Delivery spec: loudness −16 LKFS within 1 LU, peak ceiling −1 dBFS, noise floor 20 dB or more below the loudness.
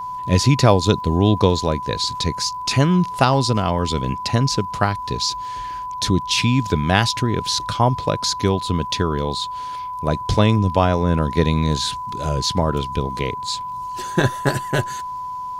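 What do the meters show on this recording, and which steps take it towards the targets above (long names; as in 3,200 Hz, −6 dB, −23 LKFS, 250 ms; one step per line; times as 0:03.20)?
crackle rate 28 per second; interfering tone 1,000 Hz; level of the tone −26 dBFS; integrated loudness −20.0 LKFS; sample peak −1.0 dBFS; target loudness −16.0 LKFS
→ click removal
notch filter 1,000 Hz, Q 30
level +4 dB
brickwall limiter −1 dBFS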